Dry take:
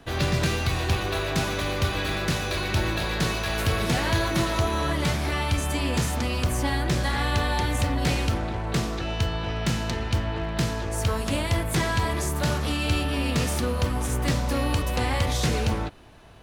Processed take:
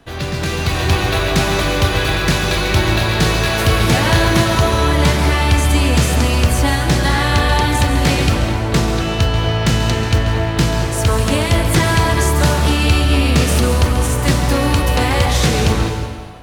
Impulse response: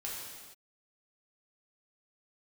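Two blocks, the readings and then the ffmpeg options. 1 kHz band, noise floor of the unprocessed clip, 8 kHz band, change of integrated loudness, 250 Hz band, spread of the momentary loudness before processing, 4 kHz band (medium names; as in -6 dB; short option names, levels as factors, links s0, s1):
+10.0 dB, -30 dBFS, +10.5 dB, +10.5 dB, +10.0 dB, 3 LU, +10.5 dB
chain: -filter_complex "[0:a]dynaudnorm=f=400:g=3:m=2.66,asplit=2[s0][s1];[1:a]atrim=start_sample=2205,adelay=136[s2];[s1][s2]afir=irnorm=-1:irlink=0,volume=0.473[s3];[s0][s3]amix=inputs=2:normalize=0,volume=1.12"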